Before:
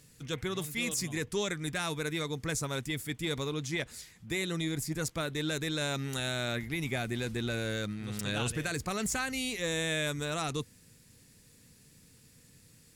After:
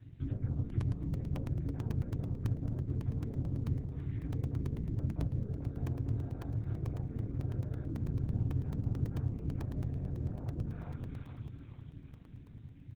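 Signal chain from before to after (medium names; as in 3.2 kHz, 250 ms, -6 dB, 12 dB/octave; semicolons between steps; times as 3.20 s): LPC vocoder at 8 kHz whisper; compression 4:1, threshold -42 dBFS, peak gain reduction 12.5 dB; 5.40–7.88 s: peaking EQ 74 Hz -9 dB 1.5 oct; frequency-shifting echo 438 ms, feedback 49%, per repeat -83 Hz, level -4 dB; low-pass that closes with the level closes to 570 Hz, closed at -38.5 dBFS; bass shelf 260 Hz +10 dB; reverberation RT60 0.30 s, pre-delay 5 ms, DRR -1 dB; ring modulator 110 Hz; crackling interface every 0.11 s, samples 64, zero, from 0.70 s; trim -7.5 dB; Opus 16 kbps 48 kHz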